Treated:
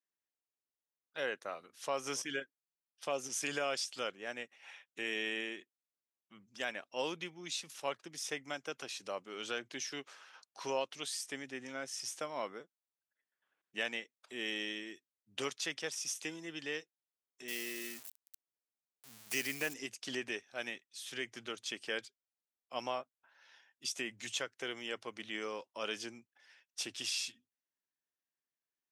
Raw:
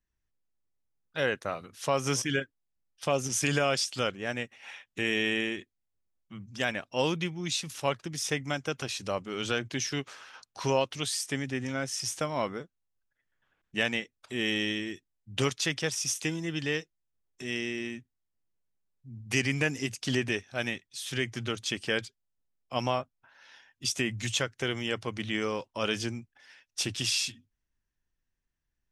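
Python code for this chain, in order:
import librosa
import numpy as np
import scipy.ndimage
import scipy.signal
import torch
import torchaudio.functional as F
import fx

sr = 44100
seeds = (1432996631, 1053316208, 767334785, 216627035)

y = fx.crossing_spikes(x, sr, level_db=-26.0, at=(17.48, 19.74))
y = scipy.signal.sosfilt(scipy.signal.butter(2, 330.0, 'highpass', fs=sr, output='sos'), y)
y = y * librosa.db_to_amplitude(-8.0)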